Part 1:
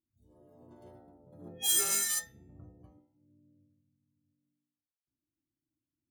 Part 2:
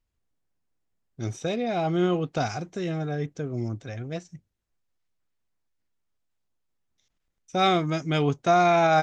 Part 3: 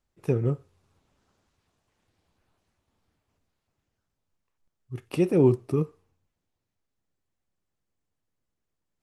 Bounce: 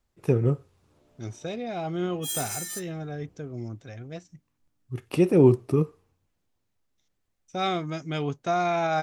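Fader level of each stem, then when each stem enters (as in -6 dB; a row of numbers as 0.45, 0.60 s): -4.5, -5.5, +2.5 dB; 0.60, 0.00, 0.00 s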